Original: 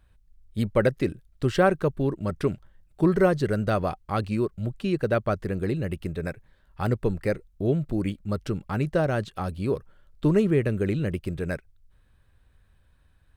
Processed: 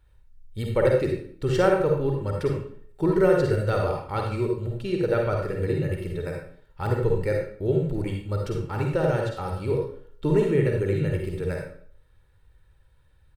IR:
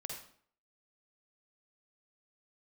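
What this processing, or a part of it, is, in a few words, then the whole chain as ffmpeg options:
microphone above a desk: -filter_complex "[0:a]aecho=1:1:2.2:0.54[link_01];[1:a]atrim=start_sample=2205[link_02];[link_01][link_02]afir=irnorm=-1:irlink=0,volume=1.5dB"

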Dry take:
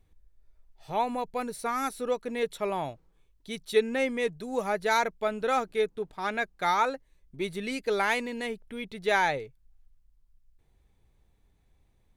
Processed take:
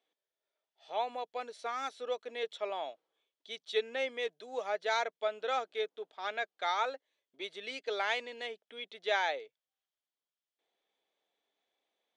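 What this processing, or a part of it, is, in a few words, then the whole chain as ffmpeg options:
phone speaker on a table: -af "highpass=frequency=360:width=0.5412,highpass=frequency=360:width=1.3066,equalizer=frequency=360:width_type=q:width=4:gain=-5,equalizer=frequency=660:width_type=q:width=4:gain=4,equalizer=frequency=970:width_type=q:width=4:gain=-3,equalizer=frequency=3300:width_type=q:width=4:gain=9,lowpass=frequency=6700:width=0.5412,lowpass=frequency=6700:width=1.3066,volume=-6.5dB"

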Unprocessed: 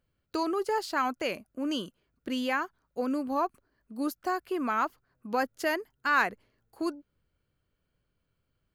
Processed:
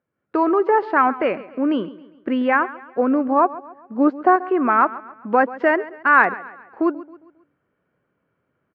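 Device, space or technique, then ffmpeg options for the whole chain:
action camera in a waterproof case: -filter_complex "[0:a]highpass=200,asettb=1/sr,asplit=3[link_01][link_02][link_03];[link_01]atrim=end=3.954[link_04];[link_02]atrim=start=3.95:end=4.36,asetpts=PTS-STARTPTS,afade=type=in:duration=0.004:curve=qsin,afade=type=out:start_time=0.406:duration=0.004:curve=qsin,equalizer=frequency=560:width_type=o:width=2.1:gain=5[link_05];[link_03]atrim=start=4.356[link_06];[link_04][link_05]acrossfade=duration=0.004:curve1=hsin:curve2=qsin[link_07];[link_07][link_06]acrossfade=duration=0.004:curve1=qsin:curve2=hsin,lowpass=frequency=2000:width=0.5412,lowpass=frequency=2000:width=1.3066,aecho=1:1:135|270|405|540:0.133|0.0587|0.0258|0.0114,dynaudnorm=framelen=110:gausssize=5:maxgain=10dB,volume=2.5dB" -ar 48000 -c:a aac -b:a 64k

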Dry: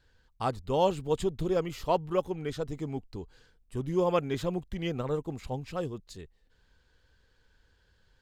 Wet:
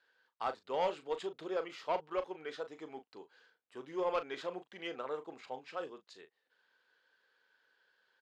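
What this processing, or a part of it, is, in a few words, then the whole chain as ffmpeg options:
intercom: -filter_complex "[0:a]highpass=frequency=250:poles=1,highpass=450,lowpass=4300,equalizer=frequency=1500:width_type=o:width=0.6:gain=4,asoftclip=type=tanh:threshold=-21.5dB,asplit=2[link_01][link_02];[link_02]adelay=38,volume=-11dB[link_03];[link_01][link_03]amix=inputs=2:normalize=0,volume=-3.5dB"

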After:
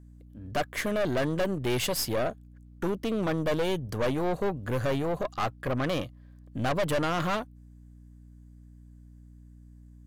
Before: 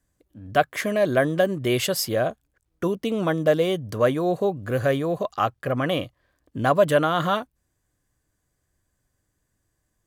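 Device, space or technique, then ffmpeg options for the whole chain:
valve amplifier with mains hum: -af "aeval=exprs='(tanh(15.8*val(0)+0.5)-tanh(0.5))/15.8':channel_layout=same,aeval=exprs='val(0)+0.00355*(sin(2*PI*60*n/s)+sin(2*PI*2*60*n/s)/2+sin(2*PI*3*60*n/s)/3+sin(2*PI*4*60*n/s)/4+sin(2*PI*5*60*n/s)/5)':channel_layout=same"

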